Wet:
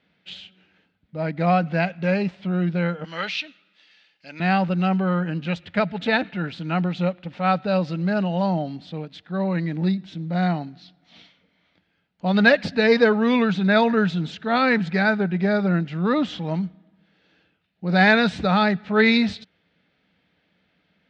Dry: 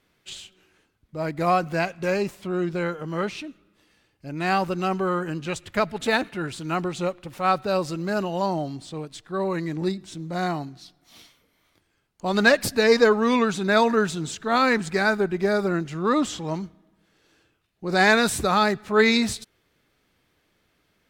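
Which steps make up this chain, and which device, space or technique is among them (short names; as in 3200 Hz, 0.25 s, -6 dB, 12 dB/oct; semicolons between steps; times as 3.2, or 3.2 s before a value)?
3.04–4.4 weighting filter ITU-R 468; guitar cabinet (speaker cabinet 91–4000 Hz, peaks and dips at 120 Hz -8 dB, 180 Hz +8 dB, 370 Hz -9 dB, 1100 Hz -9 dB); gain +2.5 dB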